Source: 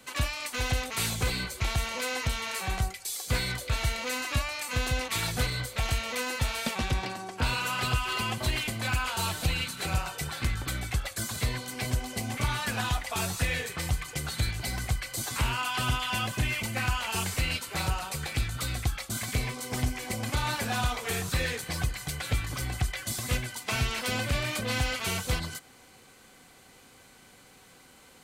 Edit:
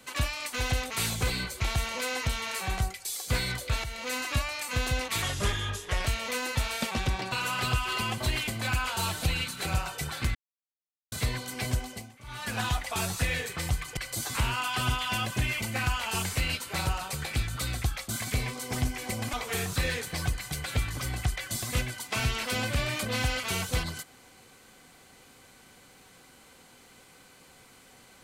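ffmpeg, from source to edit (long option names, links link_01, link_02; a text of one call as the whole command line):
ffmpeg -i in.wav -filter_complex "[0:a]asplit=11[link_01][link_02][link_03][link_04][link_05][link_06][link_07][link_08][link_09][link_10][link_11];[link_01]atrim=end=3.84,asetpts=PTS-STARTPTS,afade=type=out:start_time=3.836:duration=0.004:curve=hsin:silence=0.251189[link_12];[link_02]atrim=start=3.84:end=5.224,asetpts=PTS-STARTPTS,afade=type=in:duration=0.3:silence=0.251189[link_13];[link_03]atrim=start=5.22:end=5.9,asetpts=PTS-STARTPTS,asetrate=35721,aresample=44100,atrim=end_sample=37022,asetpts=PTS-STARTPTS[link_14];[link_04]atrim=start=5.896:end=7.162[link_15];[link_05]atrim=start=7.518:end=10.55,asetpts=PTS-STARTPTS,afade=type=out:start_time=3.028:duration=0.004:curve=hsin[link_16];[link_06]atrim=start=10.55:end=11.32,asetpts=PTS-STARTPTS,volume=0[link_17];[link_07]atrim=start=11.32:end=12.32,asetpts=PTS-STARTPTS,afade=type=in:duration=0.004:curve=hsin,afade=type=out:start_time=0.64:duration=0.36:silence=0.0891251[link_18];[link_08]atrim=start=12.32:end=12.44,asetpts=PTS-STARTPTS,volume=-21dB[link_19];[link_09]atrim=start=12.44:end=14.172,asetpts=PTS-STARTPTS,afade=type=in:duration=0.36:silence=0.0891251[link_20];[link_10]atrim=start=14.978:end=20.342[link_21];[link_11]atrim=start=20.888[link_22];[link_12][link_13]concat=n=2:v=0:a=1[link_23];[link_23][link_14]acrossfade=duration=0.004:curve1=hsin:curve2=hsin[link_24];[link_24][link_15]acrossfade=duration=0.004:curve1=hsin:curve2=hsin[link_25];[link_16][link_17][link_18][link_19][link_20]concat=n=5:v=0:a=1[link_26];[link_25][link_26]acrossfade=duration=0.004:curve1=hsin:curve2=hsin[link_27];[link_27][link_21]acrossfade=duration=0.004:curve1=hsin:curve2=hsin[link_28];[link_28][link_22]acrossfade=duration=0.004:curve1=hsin:curve2=hsin" out.wav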